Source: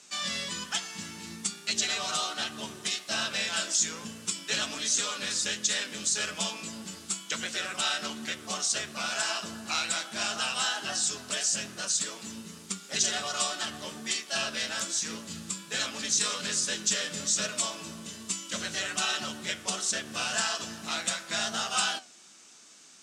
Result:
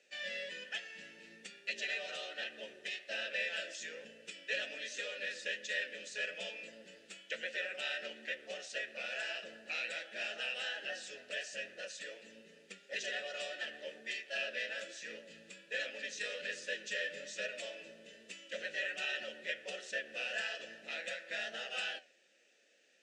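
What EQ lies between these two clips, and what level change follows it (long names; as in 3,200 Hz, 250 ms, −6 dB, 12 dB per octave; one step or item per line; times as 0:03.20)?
mains-hum notches 50/100/150 Hz
dynamic equaliser 2,100 Hz, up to +4 dB, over −44 dBFS, Q 0.74
formant filter e
+3.0 dB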